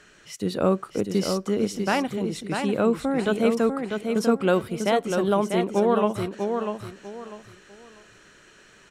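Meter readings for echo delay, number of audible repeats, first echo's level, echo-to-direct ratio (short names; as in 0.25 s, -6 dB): 0.646 s, 3, -5.5 dB, -5.0 dB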